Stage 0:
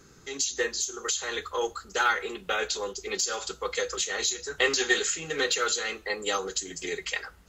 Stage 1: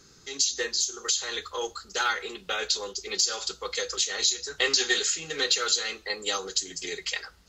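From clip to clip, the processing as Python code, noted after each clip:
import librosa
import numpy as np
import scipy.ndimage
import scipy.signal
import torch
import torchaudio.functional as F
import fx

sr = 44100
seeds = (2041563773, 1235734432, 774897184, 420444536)

y = fx.peak_eq(x, sr, hz=4700.0, db=10.5, octaves=1.1)
y = y * 10.0 ** (-3.5 / 20.0)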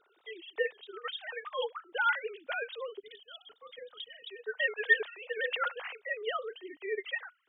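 y = fx.sine_speech(x, sr)
y = fx.spec_box(y, sr, start_s=3.0, length_s=1.28, low_hz=310.0, high_hz=2900.0, gain_db=-15)
y = y * 10.0 ** (-6.0 / 20.0)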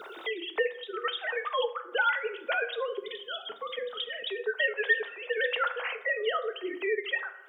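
y = fx.rev_fdn(x, sr, rt60_s=0.73, lf_ratio=1.05, hf_ratio=0.5, size_ms=27.0, drr_db=8.0)
y = fx.band_squash(y, sr, depth_pct=70)
y = y * 10.0 ** (4.5 / 20.0)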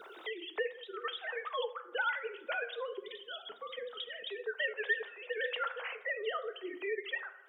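y = fx.vibrato(x, sr, rate_hz=13.0, depth_cents=51.0)
y = y * 10.0 ** (-7.0 / 20.0)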